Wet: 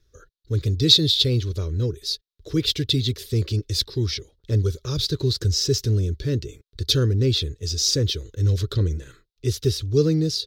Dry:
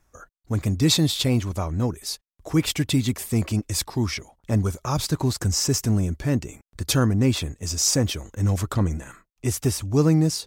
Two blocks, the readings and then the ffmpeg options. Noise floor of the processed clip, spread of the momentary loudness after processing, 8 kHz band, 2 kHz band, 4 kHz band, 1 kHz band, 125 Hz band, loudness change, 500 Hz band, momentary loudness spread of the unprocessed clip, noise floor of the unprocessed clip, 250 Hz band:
-75 dBFS, 9 LU, -4.0 dB, -5.5 dB, +6.5 dB, -14.0 dB, +1.0 dB, +1.0 dB, +2.5 dB, 9 LU, -75 dBFS, -4.0 dB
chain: -af "firequalizer=gain_entry='entry(120,0);entry(210,-13);entry(420,4);entry(730,-25);entry(1500,-8);entry(2300,-10);entry(3800,8);entry(7800,-14);entry(14000,-9)':delay=0.05:min_phase=1,volume=1.33"

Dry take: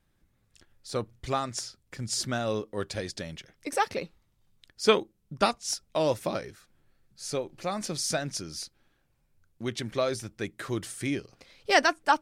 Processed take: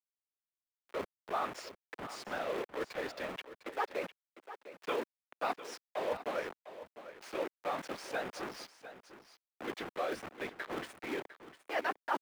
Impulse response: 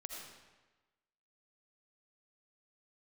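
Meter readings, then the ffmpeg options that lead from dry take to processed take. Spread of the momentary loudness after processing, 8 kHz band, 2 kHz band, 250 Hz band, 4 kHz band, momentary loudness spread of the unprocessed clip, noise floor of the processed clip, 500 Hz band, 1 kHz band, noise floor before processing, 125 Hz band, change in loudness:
14 LU, -19.0 dB, -8.5 dB, -11.0 dB, -14.0 dB, 16 LU, under -85 dBFS, -8.5 dB, -8.0 dB, -71 dBFS, -20.0 dB, -9.5 dB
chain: -filter_complex "[0:a]highpass=f=41:w=0.5412,highpass=f=41:w=1.3066,afftfilt=real='re*gte(hypot(re,im),0.00708)':imag='im*gte(hypot(re,im),0.00708)':win_size=1024:overlap=0.75,lowshelf=f=110:g=4.5,afftfilt=real='hypot(re,im)*cos(2*PI*random(0))':imag='hypot(re,im)*sin(2*PI*random(1))':win_size=512:overlap=0.75,areverse,acompressor=threshold=0.00708:ratio=5,areverse,acrusher=bits=7:mix=0:aa=0.000001,acrossover=split=300 2900:gain=0.0794 1 0.1[s0][s1][s2];[s0][s1][s2]amix=inputs=3:normalize=0,acrossover=split=290|6000[s3][s4][s5];[s3]acrusher=samples=37:mix=1:aa=0.000001:lfo=1:lforange=22.2:lforate=1.3[s6];[s6][s4][s5]amix=inputs=3:normalize=0,aecho=1:1:703:0.211,volume=3.55"

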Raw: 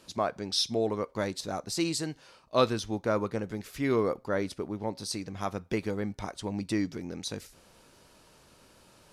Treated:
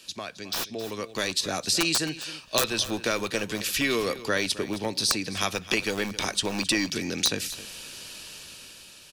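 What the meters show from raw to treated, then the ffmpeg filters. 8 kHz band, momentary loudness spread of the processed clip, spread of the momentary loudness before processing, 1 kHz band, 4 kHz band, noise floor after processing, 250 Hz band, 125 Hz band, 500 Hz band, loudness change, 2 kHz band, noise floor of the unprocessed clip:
+11.0 dB, 14 LU, 10 LU, +1.0 dB, +9.5 dB, -49 dBFS, +1.0 dB, -1.5 dB, -0.5 dB, +4.5 dB, +11.5 dB, -60 dBFS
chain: -filter_complex "[0:a]bandreject=f=60:t=h:w=6,bandreject=f=120:t=h:w=6,acrossover=split=160[s0][s1];[s0]aeval=exprs='(mod(75*val(0)+1,2)-1)/75':c=same[s2];[s1]highshelf=f=1600:t=q:w=1.5:g=12.5[s3];[s2][s3]amix=inputs=2:normalize=0,aeval=exprs='(mod(2.99*val(0)+1,2)-1)/2.99':c=same,acrossover=split=210|2100[s4][s5][s6];[s4]acompressor=threshold=0.00447:ratio=4[s7];[s5]acompressor=threshold=0.0224:ratio=4[s8];[s6]acompressor=threshold=0.0251:ratio=4[s9];[s7][s8][s9]amix=inputs=3:normalize=0,equalizer=f=1100:w=6:g=2.5,bandreject=f=2100:w=6.6,aecho=1:1:265:0.158,dynaudnorm=f=170:g=13:m=3.55,volume=0.75"

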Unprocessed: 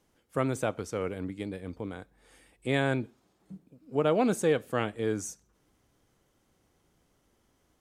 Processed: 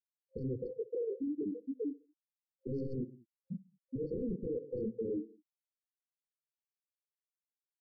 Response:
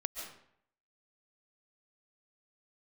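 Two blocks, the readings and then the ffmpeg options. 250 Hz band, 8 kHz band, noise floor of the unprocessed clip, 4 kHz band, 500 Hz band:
-6.0 dB, under -35 dB, -71 dBFS, under -35 dB, -8.5 dB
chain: -filter_complex "[0:a]aeval=exprs='val(0)+0.5*0.0178*sgn(val(0))':c=same,dynaudnorm=f=100:g=7:m=1.41,afftfilt=real='re*gte(hypot(re,im),0.251)':imag='im*gte(hypot(re,im),0.251)':win_size=1024:overlap=0.75,lowshelf=f=67:g=-6.5,alimiter=limit=0.126:level=0:latency=1:release=15,asplit=2[s0][s1];[s1]adelay=68,lowpass=f=2100:p=1,volume=0.0668,asplit=2[s2][s3];[s3]adelay=68,lowpass=f=2100:p=1,volume=0.46,asplit=2[s4][s5];[s5]adelay=68,lowpass=f=2100:p=1,volume=0.46[s6];[s2][s4][s6]amix=inputs=3:normalize=0[s7];[s0][s7]amix=inputs=2:normalize=0,acompressor=threshold=0.0398:ratio=8,flanger=delay=16:depth=6.6:speed=2.2,aresample=16000,aeval=exprs='0.0596*sin(PI/2*2.82*val(0)/0.0596)':c=same,aresample=44100,afftfilt=real='re*(1-between(b*sr/4096,530,4300))':imag='im*(1-between(b*sr/4096,530,4300))':win_size=4096:overlap=0.75,volume=0.447"

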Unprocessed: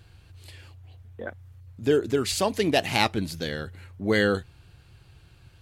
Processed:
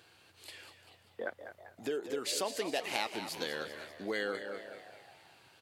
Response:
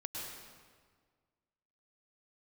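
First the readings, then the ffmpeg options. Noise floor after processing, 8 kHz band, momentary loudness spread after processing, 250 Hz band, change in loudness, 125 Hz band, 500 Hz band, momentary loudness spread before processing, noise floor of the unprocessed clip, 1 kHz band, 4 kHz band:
-64 dBFS, -6.0 dB, 18 LU, -15.5 dB, -12.0 dB, -23.5 dB, -11.0 dB, 17 LU, -55 dBFS, -10.5 dB, -8.5 dB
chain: -filter_complex "[0:a]asplit=2[s0][s1];[s1]adelay=224,lowpass=f=2000:p=1,volume=0.168,asplit=2[s2][s3];[s3]adelay=224,lowpass=f=2000:p=1,volume=0.26,asplit=2[s4][s5];[s5]adelay=224,lowpass=f=2000:p=1,volume=0.26[s6];[s2][s4][s6]amix=inputs=3:normalize=0[s7];[s0][s7]amix=inputs=2:normalize=0,acompressor=threshold=0.0282:ratio=5,highpass=370,asplit=2[s8][s9];[s9]asplit=6[s10][s11][s12][s13][s14][s15];[s10]adelay=195,afreqshift=75,volume=0.282[s16];[s11]adelay=390,afreqshift=150,volume=0.155[s17];[s12]adelay=585,afreqshift=225,volume=0.0851[s18];[s13]adelay=780,afreqshift=300,volume=0.0468[s19];[s14]adelay=975,afreqshift=375,volume=0.0257[s20];[s15]adelay=1170,afreqshift=450,volume=0.0141[s21];[s16][s17][s18][s19][s20][s21]amix=inputs=6:normalize=0[s22];[s8][s22]amix=inputs=2:normalize=0"

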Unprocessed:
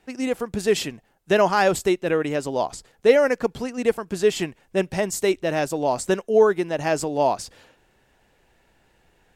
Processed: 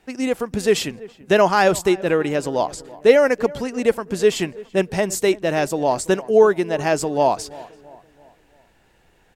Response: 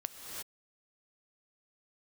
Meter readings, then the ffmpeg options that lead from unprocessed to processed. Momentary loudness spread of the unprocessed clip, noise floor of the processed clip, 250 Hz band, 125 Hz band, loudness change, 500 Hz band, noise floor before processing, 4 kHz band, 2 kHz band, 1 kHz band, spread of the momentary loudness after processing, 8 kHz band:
9 LU, -58 dBFS, +3.0 dB, +3.0 dB, +3.0 dB, +3.0 dB, -63 dBFS, +3.0 dB, +3.0 dB, +3.0 dB, 9 LU, +3.0 dB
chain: -filter_complex "[0:a]asplit=2[s0][s1];[s1]adelay=334,lowpass=f=1700:p=1,volume=0.106,asplit=2[s2][s3];[s3]adelay=334,lowpass=f=1700:p=1,volume=0.48,asplit=2[s4][s5];[s5]adelay=334,lowpass=f=1700:p=1,volume=0.48,asplit=2[s6][s7];[s7]adelay=334,lowpass=f=1700:p=1,volume=0.48[s8];[s0][s2][s4][s6][s8]amix=inputs=5:normalize=0,volume=1.41"

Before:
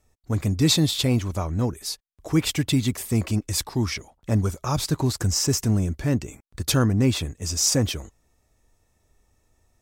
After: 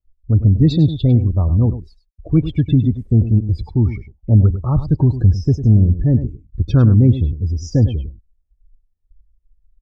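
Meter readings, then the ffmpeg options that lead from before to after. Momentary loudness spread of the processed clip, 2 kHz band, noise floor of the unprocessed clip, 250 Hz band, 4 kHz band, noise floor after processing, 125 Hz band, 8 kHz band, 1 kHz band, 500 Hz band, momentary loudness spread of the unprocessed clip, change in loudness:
8 LU, no reading, -68 dBFS, +6.5 dB, under -10 dB, -64 dBFS, +11.5 dB, under -20 dB, -3.0 dB, +2.5 dB, 9 LU, +8.0 dB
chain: -af "aemphasis=mode=reproduction:type=riaa,afftdn=nr=28:nf=-27,aecho=1:1:101:0.251,volume=0.891"

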